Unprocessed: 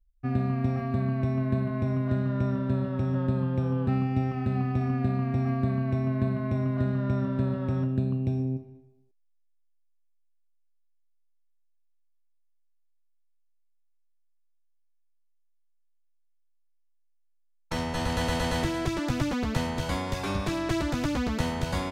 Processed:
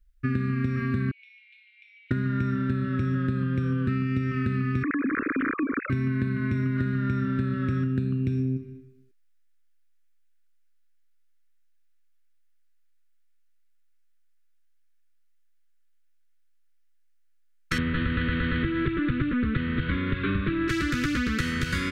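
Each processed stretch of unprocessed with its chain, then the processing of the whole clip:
0:01.11–0:02.11: Chebyshev high-pass with heavy ripple 2,200 Hz, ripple 6 dB + high-frequency loss of the air 380 metres
0:04.83–0:05.90: three sine waves on the formant tracks + downward compressor 3 to 1, threshold −29 dBFS
0:17.78–0:20.68: variable-slope delta modulation 32 kbit/s + Butterworth low-pass 3,900 Hz 72 dB per octave + tilt shelving filter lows +5 dB, about 1,300 Hz
whole clip: Chebyshev band-stop filter 340–1,800 Hz, order 2; parametric band 1,300 Hz +13.5 dB 1.3 octaves; downward compressor, threshold −30 dBFS; level +7 dB

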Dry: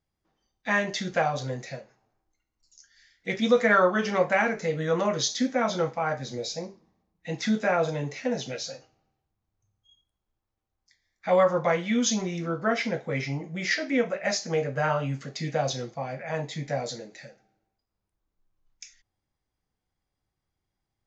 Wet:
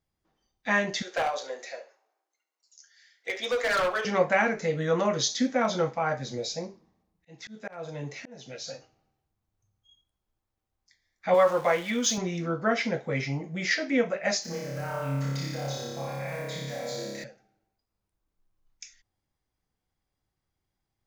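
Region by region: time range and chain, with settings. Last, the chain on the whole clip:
0:01.02–0:04.05: high-pass filter 430 Hz 24 dB per octave + gain into a clipping stage and back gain 23 dB + flutter between parallel walls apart 11.6 metres, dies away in 0.28 s
0:05.56–0:08.68: gain into a clipping stage and back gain 15 dB + volume swells 618 ms
0:11.34–0:12.18: converter with a step at zero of −37.5 dBFS + bass and treble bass −11 dB, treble 0 dB + one half of a high-frequency compander decoder only
0:14.42–0:17.24: one scale factor per block 5 bits + downward compressor 4 to 1, threshold −38 dBFS + flutter between parallel walls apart 5 metres, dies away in 1.4 s
whole clip: no processing

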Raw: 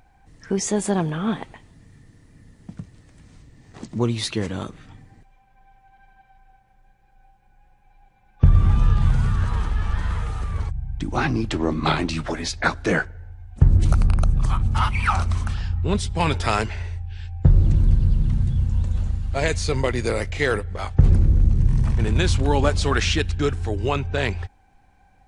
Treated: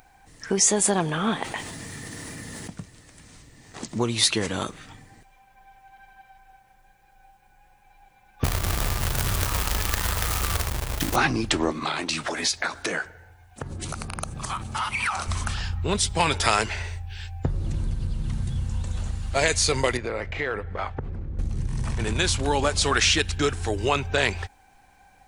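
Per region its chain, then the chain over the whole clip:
0:01.41–0:02.70: high-pass filter 120 Hz 6 dB per octave + envelope flattener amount 70%
0:08.44–0:11.16: parametric band 72 Hz +4 dB 2 octaves + log-companded quantiser 4 bits
0:11.71–0:15.28: high-pass filter 210 Hz 6 dB per octave + downward compressor 10 to 1, threshold −27 dBFS
0:19.97–0:21.39: low-pass filter 2,100 Hz + downward compressor, threshold −26 dBFS
whole clip: high-shelf EQ 6,600 Hz +9.5 dB; downward compressor, threshold −19 dBFS; low-shelf EQ 330 Hz −10 dB; level +5.5 dB

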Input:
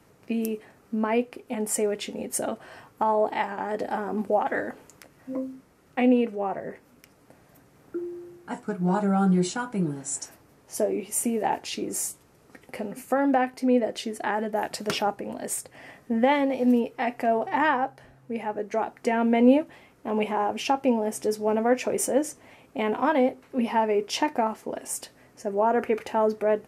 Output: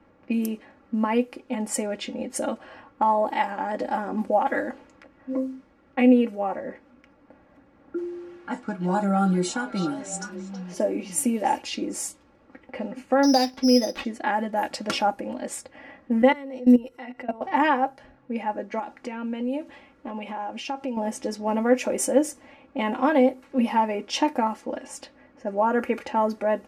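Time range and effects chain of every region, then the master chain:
0:07.98–0:11.62: echo through a band-pass that steps 325 ms, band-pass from 3,500 Hz, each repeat −1.4 octaves, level −4.5 dB + one half of a high-frequency compander encoder only
0:13.23–0:14.05: bad sample-rate conversion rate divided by 8×, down none, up zero stuff + high-frequency loss of the air 270 metres
0:16.22–0:17.41: output level in coarse steps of 20 dB + EQ curve with evenly spaced ripples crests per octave 2, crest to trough 9 dB
0:18.79–0:20.97: high-shelf EQ 5,300 Hz +11.5 dB + downward compressor 3 to 1, threshold −33 dBFS
whole clip: comb filter 3.6 ms, depth 68%; low-pass that shuts in the quiet parts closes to 2,100 Hz, open at −20.5 dBFS

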